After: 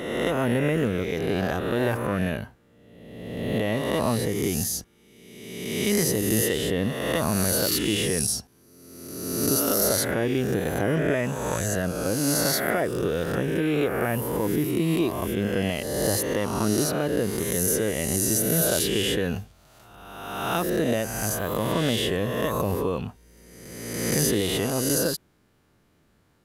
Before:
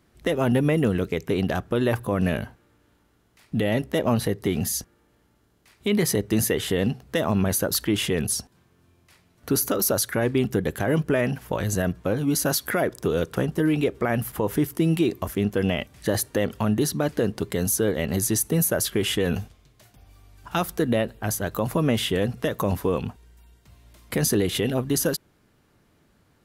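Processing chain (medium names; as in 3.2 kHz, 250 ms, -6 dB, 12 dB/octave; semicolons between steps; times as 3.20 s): reverse spectral sustain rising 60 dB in 1.46 s; trim -4.5 dB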